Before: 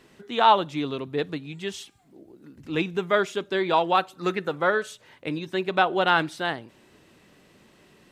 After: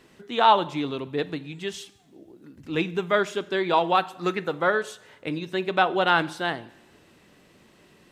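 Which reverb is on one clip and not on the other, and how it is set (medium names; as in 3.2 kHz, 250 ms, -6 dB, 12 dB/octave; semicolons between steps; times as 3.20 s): two-slope reverb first 0.73 s, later 2 s, DRR 15.5 dB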